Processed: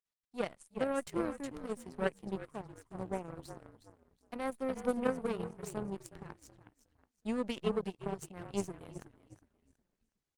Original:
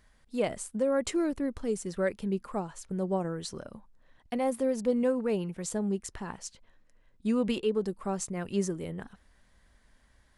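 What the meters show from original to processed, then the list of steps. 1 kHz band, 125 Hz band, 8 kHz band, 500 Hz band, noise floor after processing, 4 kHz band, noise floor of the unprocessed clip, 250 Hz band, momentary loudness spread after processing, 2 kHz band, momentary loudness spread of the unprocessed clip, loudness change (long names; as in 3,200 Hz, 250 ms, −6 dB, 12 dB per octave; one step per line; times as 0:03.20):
−3.5 dB, −7.5 dB, −12.0 dB, −7.0 dB, below −85 dBFS, −7.0 dB, −64 dBFS, −8.0 dB, 16 LU, −3.5 dB, 12 LU, −7.0 dB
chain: echo with shifted repeats 366 ms, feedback 53%, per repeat −43 Hz, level −7 dB
power curve on the samples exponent 2
Opus 32 kbit/s 48,000 Hz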